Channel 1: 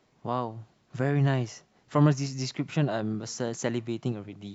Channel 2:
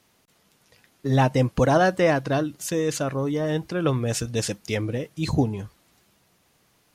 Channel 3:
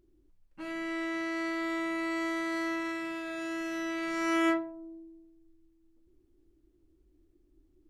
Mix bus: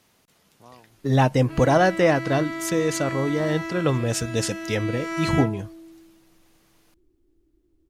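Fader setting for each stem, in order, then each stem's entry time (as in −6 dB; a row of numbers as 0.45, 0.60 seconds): −19.0, +1.0, +1.5 decibels; 0.35, 0.00, 0.90 seconds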